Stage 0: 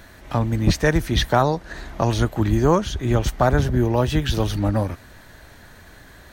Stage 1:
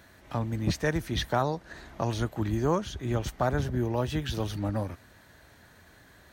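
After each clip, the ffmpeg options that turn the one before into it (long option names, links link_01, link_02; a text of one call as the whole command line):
ffmpeg -i in.wav -af "highpass=63,volume=-9dB" out.wav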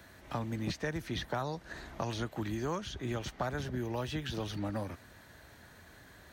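ffmpeg -i in.wav -filter_complex "[0:a]acrossover=split=140|1500|6000[link_01][link_02][link_03][link_04];[link_01]acompressor=threshold=-45dB:ratio=4[link_05];[link_02]acompressor=threshold=-35dB:ratio=4[link_06];[link_03]acompressor=threshold=-41dB:ratio=4[link_07];[link_04]acompressor=threshold=-60dB:ratio=4[link_08];[link_05][link_06][link_07][link_08]amix=inputs=4:normalize=0" out.wav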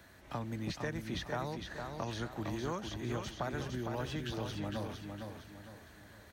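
ffmpeg -i in.wav -af "aecho=1:1:458|916|1374|1832|2290:0.531|0.207|0.0807|0.0315|0.0123,volume=-3dB" out.wav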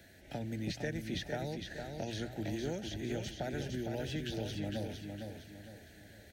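ffmpeg -i in.wav -af "asuperstop=centerf=1100:order=4:qfactor=1.3,bandreject=frequency=60:width_type=h:width=6,bandreject=frequency=120:width_type=h:width=6,volume=1dB" out.wav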